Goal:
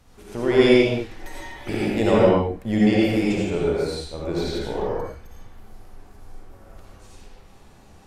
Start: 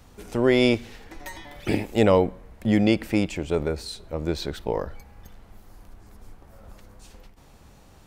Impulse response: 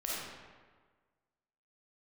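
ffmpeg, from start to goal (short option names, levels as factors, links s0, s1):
-filter_complex "[1:a]atrim=start_sample=2205,afade=t=out:st=0.23:d=0.01,atrim=end_sample=10584,asetrate=26460,aresample=44100[s0];[0:a][s0]afir=irnorm=-1:irlink=0,volume=0.596"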